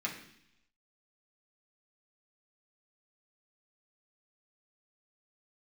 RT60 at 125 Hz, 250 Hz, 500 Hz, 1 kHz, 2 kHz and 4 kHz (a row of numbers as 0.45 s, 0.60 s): 0.90 s, 0.90 s, 0.70 s, 0.70 s, 0.90 s, 0.95 s